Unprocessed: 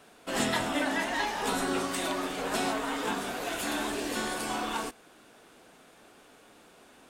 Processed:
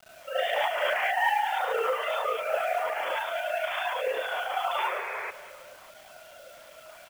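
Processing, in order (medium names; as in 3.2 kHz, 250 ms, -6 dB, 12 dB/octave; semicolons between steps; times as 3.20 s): formants replaced by sine waves; hum notches 60/120/180/240/300/360/420/480 Hz; in parallel at +0.5 dB: compression 20:1, threshold -39 dBFS, peak gain reduction 18 dB; on the sum: AM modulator 28 Hz, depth 85%; companded quantiser 6-bit; gated-style reverb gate 120 ms rising, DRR -8 dB; bit crusher 8-bit; painted sound noise, 4.78–5.31 s, 360–2600 Hz -31 dBFS; on a send: feedback delay 200 ms, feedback 46%, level -15 dB; on the sum: trim -4 dB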